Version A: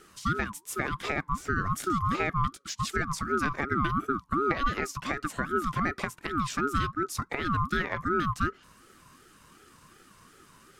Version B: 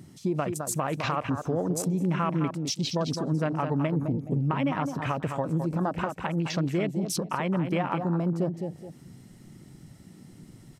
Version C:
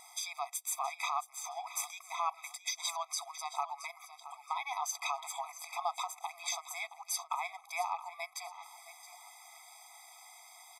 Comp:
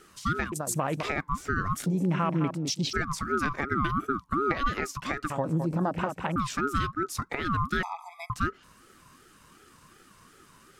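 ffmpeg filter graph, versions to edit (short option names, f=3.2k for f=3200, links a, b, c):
-filter_complex "[1:a]asplit=3[a][b][c];[0:a]asplit=5[d][e][f][g][h];[d]atrim=end=0.522[i];[a]atrim=start=0.518:end=1.032[j];[e]atrim=start=1.028:end=1.862[k];[b]atrim=start=1.858:end=2.932[l];[f]atrim=start=2.928:end=5.302[m];[c]atrim=start=5.298:end=6.362[n];[g]atrim=start=6.358:end=7.832[o];[2:a]atrim=start=7.828:end=8.302[p];[h]atrim=start=8.298[q];[i][j]acrossfade=d=0.004:c1=hsin:c2=hsin[r];[r][k]acrossfade=d=0.004:c1=hsin:c2=hsin[s];[s][l]acrossfade=d=0.004:c1=hsin:c2=hsin[t];[t][m]acrossfade=d=0.004:c1=hsin:c2=hsin[u];[u][n]acrossfade=d=0.004:c1=hsin:c2=hsin[v];[v][o]acrossfade=d=0.004:c1=hsin:c2=hsin[w];[w][p]acrossfade=d=0.004:c1=hsin:c2=hsin[x];[x][q]acrossfade=d=0.004:c1=hsin:c2=hsin"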